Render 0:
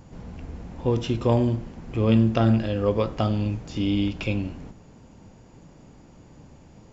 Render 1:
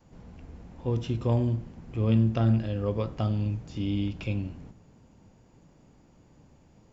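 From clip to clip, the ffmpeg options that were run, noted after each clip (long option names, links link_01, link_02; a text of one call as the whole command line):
ffmpeg -i in.wav -af "adynamicequalizer=threshold=0.0178:dfrequency=110:dqfactor=0.75:tfrequency=110:tqfactor=0.75:attack=5:release=100:ratio=0.375:range=3.5:mode=boostabove:tftype=bell,volume=-8.5dB" out.wav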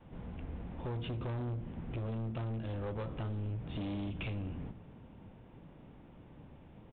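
ffmpeg -i in.wav -af "acompressor=threshold=-32dB:ratio=12,aresample=8000,asoftclip=type=hard:threshold=-38dB,aresample=44100,volume=3dB" out.wav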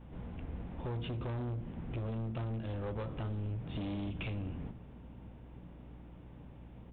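ffmpeg -i in.wav -af "aeval=exprs='val(0)+0.00251*(sin(2*PI*60*n/s)+sin(2*PI*2*60*n/s)/2+sin(2*PI*3*60*n/s)/3+sin(2*PI*4*60*n/s)/4+sin(2*PI*5*60*n/s)/5)':channel_layout=same" out.wav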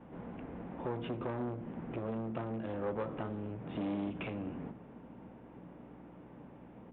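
ffmpeg -i in.wav -filter_complex "[0:a]acrossover=split=170 2300:gain=0.1 1 0.158[link_01][link_02][link_03];[link_01][link_02][link_03]amix=inputs=3:normalize=0,volume=5dB" out.wav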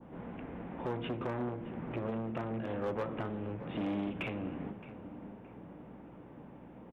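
ffmpeg -i in.wav -filter_complex "[0:a]adynamicequalizer=threshold=0.00112:dfrequency=2300:dqfactor=0.9:tfrequency=2300:tqfactor=0.9:attack=5:release=100:ratio=0.375:range=2:mode=boostabove:tftype=bell,asoftclip=type=hard:threshold=-29dB,asplit=2[link_01][link_02];[link_02]adelay=619,lowpass=frequency=1500:poles=1,volume=-12.5dB,asplit=2[link_03][link_04];[link_04]adelay=619,lowpass=frequency=1500:poles=1,volume=0.53,asplit=2[link_05][link_06];[link_06]adelay=619,lowpass=frequency=1500:poles=1,volume=0.53,asplit=2[link_07][link_08];[link_08]adelay=619,lowpass=frequency=1500:poles=1,volume=0.53,asplit=2[link_09][link_10];[link_10]adelay=619,lowpass=frequency=1500:poles=1,volume=0.53[link_11];[link_01][link_03][link_05][link_07][link_09][link_11]amix=inputs=6:normalize=0,volume=1dB" out.wav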